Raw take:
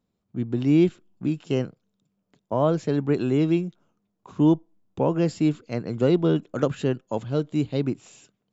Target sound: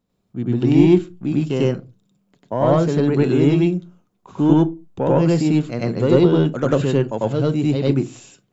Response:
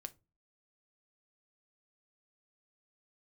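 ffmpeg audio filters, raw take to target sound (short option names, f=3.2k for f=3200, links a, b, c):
-filter_complex "[0:a]acontrast=88,asplit=2[a][b];[1:a]atrim=start_sample=2205,afade=t=out:st=0.28:d=0.01,atrim=end_sample=12789,adelay=96[c];[b][c]afir=irnorm=-1:irlink=0,volume=8dB[d];[a][d]amix=inputs=2:normalize=0,volume=-5dB"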